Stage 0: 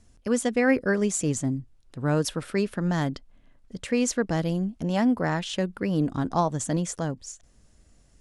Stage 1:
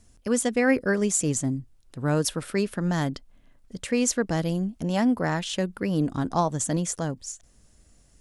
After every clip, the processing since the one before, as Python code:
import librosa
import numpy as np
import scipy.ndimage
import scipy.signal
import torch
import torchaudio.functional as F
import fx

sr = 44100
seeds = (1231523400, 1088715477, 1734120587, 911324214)

y = fx.high_shelf(x, sr, hz=7900.0, db=9.0)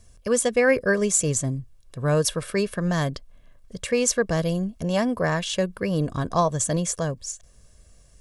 y = x + 0.54 * np.pad(x, (int(1.8 * sr / 1000.0), 0))[:len(x)]
y = y * 10.0 ** (2.0 / 20.0)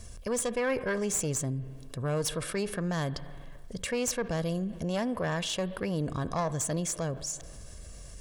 y = fx.diode_clip(x, sr, knee_db=-20.0)
y = fx.rev_spring(y, sr, rt60_s=1.3, pass_ms=(43, 53, 60), chirp_ms=30, drr_db=20.0)
y = fx.env_flatten(y, sr, amount_pct=50)
y = y * 10.0 ** (-9.0 / 20.0)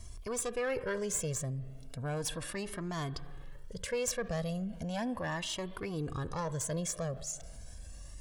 y = fx.comb_cascade(x, sr, direction='rising', hz=0.36)